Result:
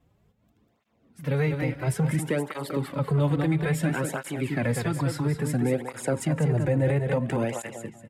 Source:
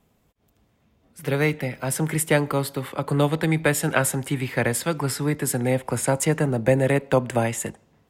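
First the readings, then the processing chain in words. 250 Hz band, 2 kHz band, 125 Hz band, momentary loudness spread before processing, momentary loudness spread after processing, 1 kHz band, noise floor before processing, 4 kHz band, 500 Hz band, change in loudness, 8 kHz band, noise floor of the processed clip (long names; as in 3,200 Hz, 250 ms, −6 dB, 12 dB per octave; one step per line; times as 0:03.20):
−2.0 dB, −7.0 dB, 0.0 dB, 6 LU, 7 LU, −6.5 dB, −65 dBFS, −8.0 dB, −5.0 dB, −3.5 dB, −11.5 dB, −68 dBFS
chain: low-shelf EQ 270 Hz +6 dB
on a send: repeating echo 195 ms, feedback 27%, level −7 dB
on the sum: brickwall limiter −13 dBFS, peak gain reduction 8.5 dB
high-shelf EQ 5,500 Hz −9.5 dB
through-zero flanger with one copy inverted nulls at 0.59 Hz, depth 5.1 ms
level −1 dB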